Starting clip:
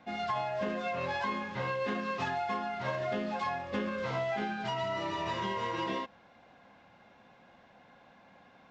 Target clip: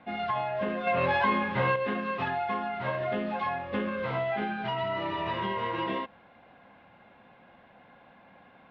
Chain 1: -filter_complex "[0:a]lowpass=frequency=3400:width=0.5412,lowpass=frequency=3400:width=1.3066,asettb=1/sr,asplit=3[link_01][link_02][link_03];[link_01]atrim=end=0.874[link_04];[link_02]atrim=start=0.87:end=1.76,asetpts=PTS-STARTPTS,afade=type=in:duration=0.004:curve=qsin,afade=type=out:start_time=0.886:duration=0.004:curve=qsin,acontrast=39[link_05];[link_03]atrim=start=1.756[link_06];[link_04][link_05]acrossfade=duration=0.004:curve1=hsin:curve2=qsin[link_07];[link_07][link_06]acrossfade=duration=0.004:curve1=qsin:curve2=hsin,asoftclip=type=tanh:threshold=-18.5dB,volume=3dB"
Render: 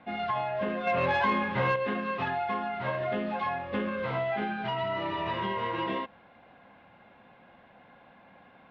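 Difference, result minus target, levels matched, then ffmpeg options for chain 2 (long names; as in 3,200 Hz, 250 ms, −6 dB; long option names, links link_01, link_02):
soft clipping: distortion +13 dB
-filter_complex "[0:a]lowpass=frequency=3400:width=0.5412,lowpass=frequency=3400:width=1.3066,asettb=1/sr,asplit=3[link_01][link_02][link_03];[link_01]atrim=end=0.874[link_04];[link_02]atrim=start=0.87:end=1.76,asetpts=PTS-STARTPTS,afade=type=in:duration=0.004:curve=qsin,afade=type=out:start_time=0.886:duration=0.004:curve=qsin,acontrast=39[link_05];[link_03]atrim=start=1.756[link_06];[link_04][link_05]acrossfade=duration=0.004:curve1=hsin:curve2=qsin[link_07];[link_07][link_06]acrossfade=duration=0.004:curve1=qsin:curve2=hsin,asoftclip=type=tanh:threshold=-11dB,volume=3dB"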